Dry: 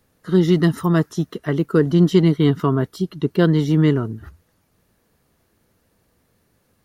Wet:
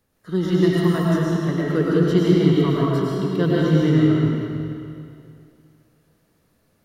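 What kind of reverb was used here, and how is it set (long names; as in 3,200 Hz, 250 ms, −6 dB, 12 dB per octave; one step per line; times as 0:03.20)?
comb and all-pass reverb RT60 2.5 s, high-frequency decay 0.9×, pre-delay 70 ms, DRR −6 dB
level −7 dB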